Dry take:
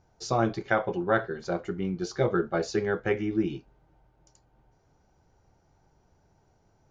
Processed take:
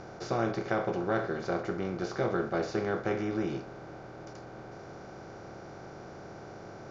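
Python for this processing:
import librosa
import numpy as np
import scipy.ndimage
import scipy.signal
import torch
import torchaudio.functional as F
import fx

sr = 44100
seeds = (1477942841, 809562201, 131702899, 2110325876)

y = fx.bin_compress(x, sr, power=0.4)
y = scipy.signal.sosfilt(scipy.signal.butter(2, 5600.0, 'lowpass', fs=sr, output='sos'), y)
y = fx.peak_eq(y, sr, hz=1700.0, db=-3.5, octaves=0.59)
y = y * 10.0 ** (-8.5 / 20.0)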